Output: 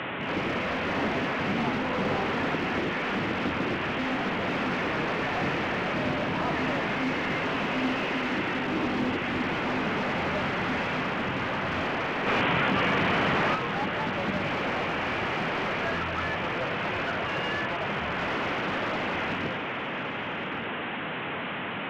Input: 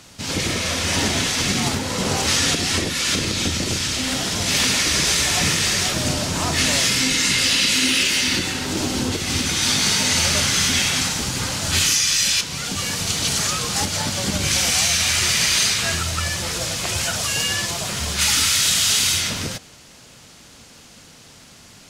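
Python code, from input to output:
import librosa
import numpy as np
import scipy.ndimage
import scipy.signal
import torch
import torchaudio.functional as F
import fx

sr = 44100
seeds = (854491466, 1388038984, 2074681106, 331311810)

p1 = fx.delta_mod(x, sr, bps=16000, step_db=-24.5)
p2 = scipy.signal.sosfilt(scipy.signal.butter(2, 180.0, 'highpass', fs=sr, output='sos'), p1)
p3 = (np.mod(10.0 ** (22.0 / 20.0) * p2 + 1.0, 2.0) - 1.0) / 10.0 ** (22.0 / 20.0)
p4 = p2 + F.gain(torch.from_numpy(p3), -5.0).numpy()
p5 = fx.air_absorb(p4, sr, metres=220.0)
p6 = p5 + 10.0 ** (-11.5 / 20.0) * np.pad(p5, (int(1113 * sr / 1000.0), 0))[:len(p5)]
p7 = fx.env_flatten(p6, sr, amount_pct=100, at=(12.26, 13.54), fade=0.02)
y = F.gain(torch.from_numpy(p7), -3.5).numpy()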